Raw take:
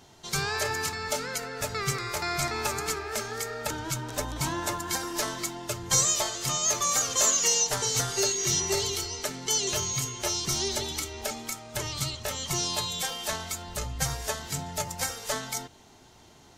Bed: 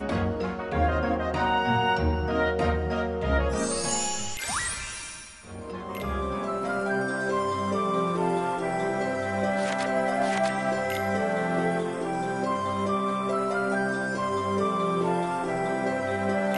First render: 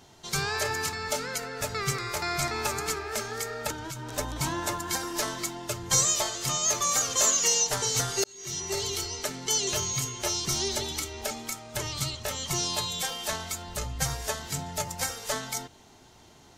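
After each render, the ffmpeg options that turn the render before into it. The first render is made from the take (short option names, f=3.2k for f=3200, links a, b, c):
-filter_complex "[0:a]asettb=1/sr,asplit=3[a][b][c];[a]atrim=end=3.714[d];[b]atrim=start=3.71:end=4.18,asetpts=PTS-STARTPTS,afade=t=in:d=0.004:c=qsin,afade=t=out:st=0.466:d=0.004:c=qsin,acompressor=threshold=-33dB:ratio=6:attack=3.2:release=140:knee=1:detection=peak[e];[c]atrim=start=4.176[f];[d][e]acrossfade=d=0.004:c1=hsin:c2=qsin[g];[g][f]acrossfade=d=0.004:c1=qsin:c2=hsin,asplit=2[h][i];[h]atrim=end=8.24,asetpts=PTS-STARTPTS,afade=t=out:st=8.236:d=0.004:c=hsin[j];[i]atrim=start=8.24,asetpts=PTS-STARTPTS,afade=t=in:d=0.77[k];[j][k]concat=n=2:v=0:a=1"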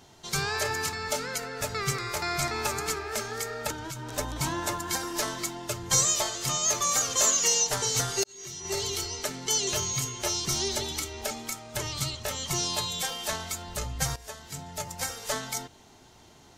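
-filter_complex "[0:a]asettb=1/sr,asplit=3[a][b][c];[a]atrim=end=8.234[d];[b]atrim=start=8.23:end=8.65,asetpts=PTS-STARTPTS,afade=t=in:d=0.004:c=qsin,afade=t=out:st=0.416:d=0.004:c=qsin,acompressor=threshold=-36dB:ratio=6:attack=3.2:release=140:knee=1:detection=peak[e];[c]atrim=start=8.646[f];[d][e]acrossfade=d=0.004:c1=hsin:c2=qsin[g];[g][f]acrossfade=d=0.004:c1=qsin:c2=hsin,asplit=2[h][i];[h]atrim=end=14.16,asetpts=PTS-STARTPTS,afade=t=out:st=14.156:d=0.004:c=hsin:silence=0.223872[j];[i]atrim=start=14.16,asetpts=PTS-STARTPTS,afade=t=in:d=1.17:silence=0.223872[k];[j][k]concat=n=2:v=0:a=1"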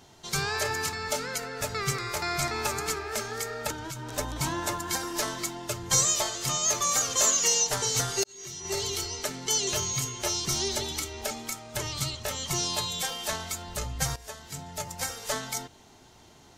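-af anull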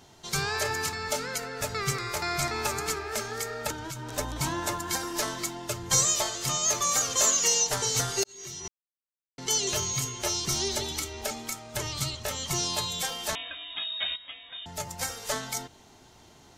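-filter_complex "[0:a]asettb=1/sr,asplit=3[a][b][c];[a]atrim=end=13.354[d];[b]atrim=start=13.35:end=14.66,asetpts=PTS-STARTPTS,afade=t=in:d=0.004:c=qsin,afade=t=out:st=1.306:d=0.004:c=qsin,lowpass=f=3.2k:t=q:w=0.5098,lowpass=f=3.2k:t=q:w=0.6013,lowpass=f=3.2k:t=q:w=0.9,lowpass=f=3.2k:t=q:w=2.563,afreqshift=-3800[e];[c]atrim=start=14.656[f];[d][e]acrossfade=d=0.004:c1=hsin:c2=qsin[g];[g][f]acrossfade=d=0.004:c1=qsin:c2=hsin,asplit=3[h][i][j];[h]atrim=end=8.68,asetpts=PTS-STARTPTS,afade=t=out:st=8.676:d=0.004:c=hsin[k];[i]atrim=start=8.68:end=9.38,asetpts=PTS-STARTPTS,volume=0[l];[j]atrim=start=9.38,asetpts=PTS-STARTPTS,afade=t=in:d=0.004:c=hsin[m];[k][l][m]concat=n=3:v=0:a=1"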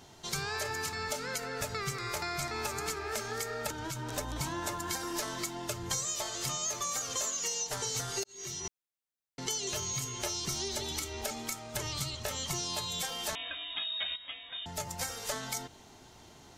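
-af "acompressor=threshold=-32dB:ratio=6"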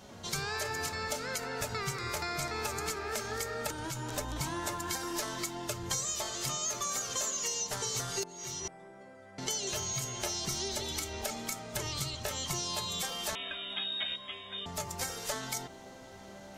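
-filter_complex "[1:a]volume=-24.5dB[a];[0:a][a]amix=inputs=2:normalize=0"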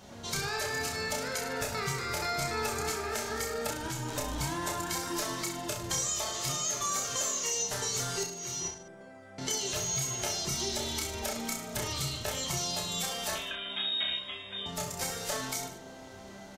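-af "aecho=1:1:30|64.5|104.2|149.8|202.3:0.631|0.398|0.251|0.158|0.1"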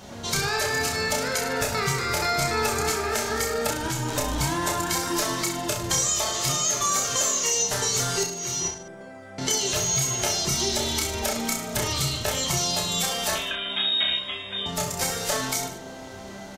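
-af "volume=8dB"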